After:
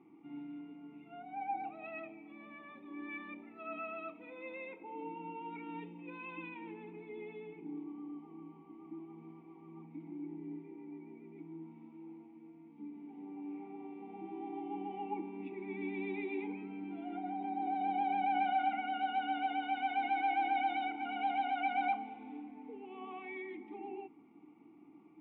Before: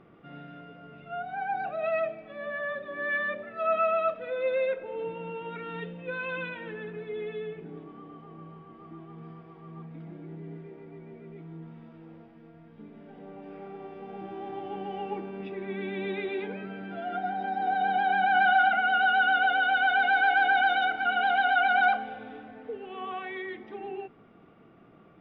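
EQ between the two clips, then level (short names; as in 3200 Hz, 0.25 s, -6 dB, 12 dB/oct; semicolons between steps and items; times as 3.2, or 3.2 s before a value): vowel filter u; +6.0 dB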